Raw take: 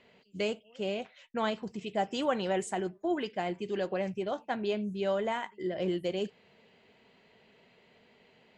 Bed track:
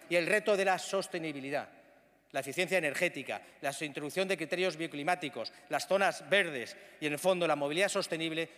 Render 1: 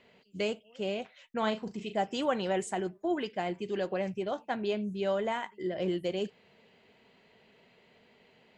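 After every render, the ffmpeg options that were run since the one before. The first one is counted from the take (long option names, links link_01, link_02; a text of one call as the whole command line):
ffmpeg -i in.wav -filter_complex "[0:a]asettb=1/sr,asplit=3[link_01][link_02][link_03];[link_01]atrim=end=1.384[link_04];[link_02]atrim=start=1.38:end=1.98,asetpts=PTS-STARTPTS,afade=type=in:duration=0.004:curve=qsin,afade=type=out:start_time=0.596:duration=0.004:curve=qsin,asplit=2[link_05][link_06];[link_06]adelay=37,volume=-10dB[link_07];[link_05][link_07]amix=inputs=2:normalize=0,atrim=end_sample=26460[link_08];[link_03]atrim=start=1.976[link_09];[link_04][link_08]acrossfade=duration=0.004:curve1=hsin:curve2=qsin[link_10];[link_10][link_09]acrossfade=duration=0.004:curve1=qsin:curve2=hsin" out.wav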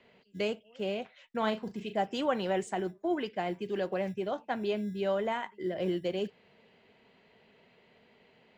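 ffmpeg -i in.wav -filter_complex "[0:a]acrossover=split=140|900|2100[link_01][link_02][link_03][link_04];[link_01]acrusher=samples=24:mix=1:aa=0.000001[link_05];[link_04]adynamicsmooth=sensitivity=5:basefreq=6900[link_06];[link_05][link_02][link_03][link_06]amix=inputs=4:normalize=0" out.wav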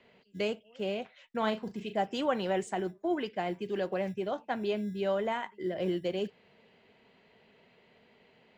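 ffmpeg -i in.wav -af anull out.wav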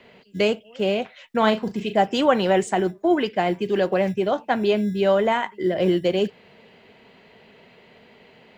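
ffmpeg -i in.wav -af "volume=11.5dB" out.wav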